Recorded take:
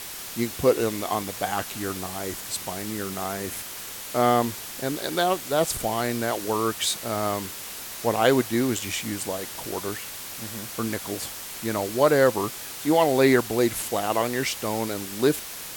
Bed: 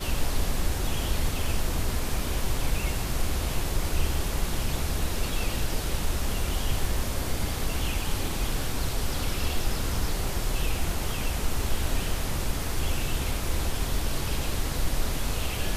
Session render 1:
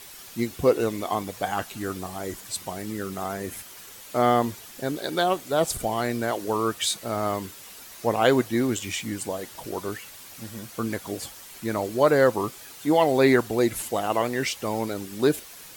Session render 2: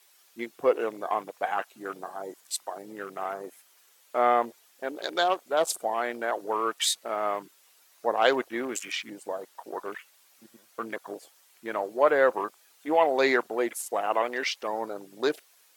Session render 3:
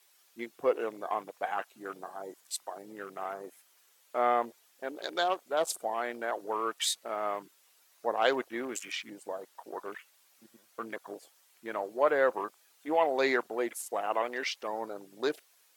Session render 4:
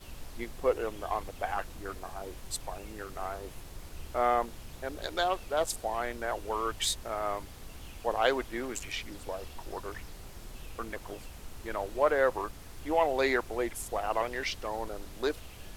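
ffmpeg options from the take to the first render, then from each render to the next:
ffmpeg -i in.wav -af "afftdn=noise_reduction=9:noise_floor=-37" out.wav
ffmpeg -i in.wav -af "highpass=500,afwtdn=0.0126" out.wav
ffmpeg -i in.wav -af "volume=-4.5dB" out.wav
ffmpeg -i in.wav -i bed.wav -filter_complex "[1:a]volume=-18dB[link_01];[0:a][link_01]amix=inputs=2:normalize=0" out.wav

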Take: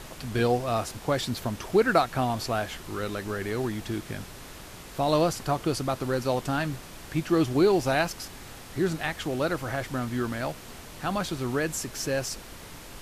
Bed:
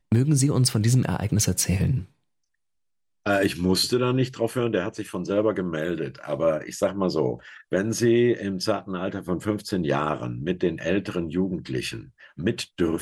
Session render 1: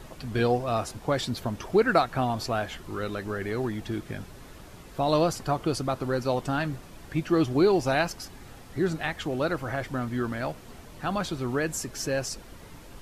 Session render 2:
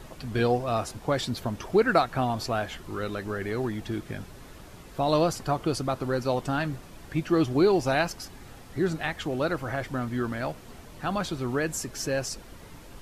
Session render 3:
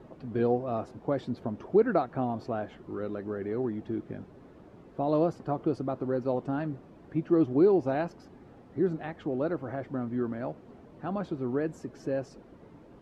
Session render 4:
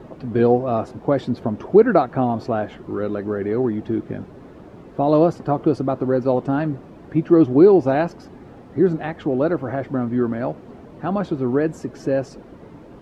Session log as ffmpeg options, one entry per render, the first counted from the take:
ffmpeg -i in.wav -af "afftdn=noise_reduction=8:noise_floor=-44" out.wav
ffmpeg -i in.wav -af anull out.wav
ffmpeg -i in.wav -af "bandpass=frequency=320:width_type=q:width=0.79:csg=0" out.wav
ffmpeg -i in.wav -af "volume=10.5dB" out.wav

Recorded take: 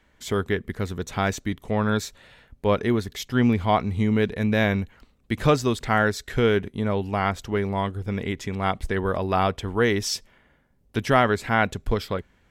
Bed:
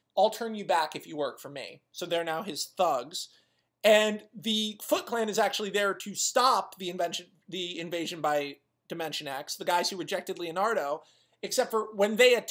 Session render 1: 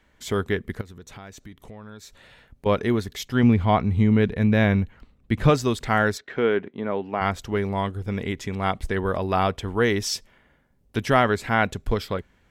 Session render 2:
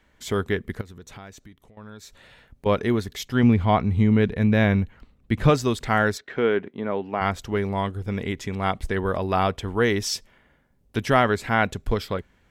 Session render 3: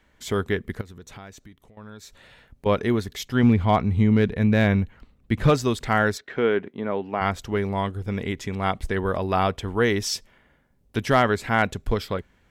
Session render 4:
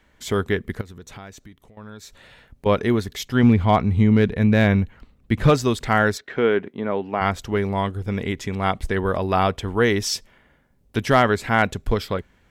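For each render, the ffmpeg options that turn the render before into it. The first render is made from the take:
ffmpeg -i in.wav -filter_complex "[0:a]asettb=1/sr,asplit=3[link_01][link_02][link_03];[link_01]atrim=end=0.814[link_04];[link_02]atrim=start=0.81:end=2.66,asetpts=PTS-STARTPTS,afade=type=in:duration=0.004:curve=qsin,afade=type=out:start_time=1.846:duration=0.004:curve=qsin,acompressor=threshold=-41dB:ratio=4:attack=3.2:release=140:knee=1:detection=peak[link_05];[link_03]atrim=start=2.656[link_06];[link_04][link_05]acrossfade=duration=0.004:curve1=hsin:curve2=qsin[link_07];[link_07][link_06]acrossfade=duration=0.004:curve1=qsin:curve2=hsin,asettb=1/sr,asplit=3[link_08][link_09][link_10];[link_08]atrim=end=3.434[link_11];[link_09]atrim=start=3.43:end=5.5,asetpts=PTS-STARTPTS,afade=type=in:duration=0.004:curve=qsin,afade=type=out:start_time=2.066:duration=0.004:curve=qsin,bass=frequency=250:gain=5,treble=frequency=4000:gain=-7[link_12];[link_10]atrim=start=5.496[link_13];[link_11][link_12]acrossfade=duration=0.004:curve1=hsin:curve2=qsin[link_14];[link_14][link_13]acrossfade=duration=0.004:curve1=qsin:curve2=hsin,asplit=3[link_15][link_16][link_17];[link_15]afade=type=out:start_time=6.17:duration=0.02[link_18];[link_16]highpass=240,lowpass=2400,afade=type=in:start_time=6.17:duration=0.02,afade=type=out:start_time=7.2:duration=0.02[link_19];[link_17]afade=type=in:start_time=7.2:duration=0.02[link_20];[link_18][link_19][link_20]amix=inputs=3:normalize=0" out.wav
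ffmpeg -i in.wav -filter_complex "[0:a]asplit=2[link_01][link_02];[link_01]atrim=end=1.77,asetpts=PTS-STARTPTS,afade=type=out:start_time=1.23:duration=0.54:silence=0.177828[link_03];[link_02]atrim=start=1.77,asetpts=PTS-STARTPTS,afade=type=in:duration=0.004:curve=hsin:silence=0.177828[link_04];[link_03][link_04]concat=n=2:v=0:a=1" out.wav
ffmpeg -i in.wav -af "asoftclip=type=hard:threshold=-8.5dB" out.wav
ffmpeg -i in.wav -af "volume=2.5dB" out.wav

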